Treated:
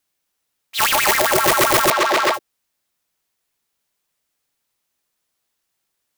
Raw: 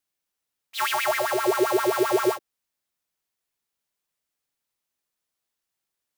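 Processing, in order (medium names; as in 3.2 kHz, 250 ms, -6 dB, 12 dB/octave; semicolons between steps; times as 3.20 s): integer overflow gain 17.5 dB; 1.90–2.34 s: three-band isolator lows -16 dB, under 270 Hz, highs -15 dB, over 5.8 kHz; trim +8.5 dB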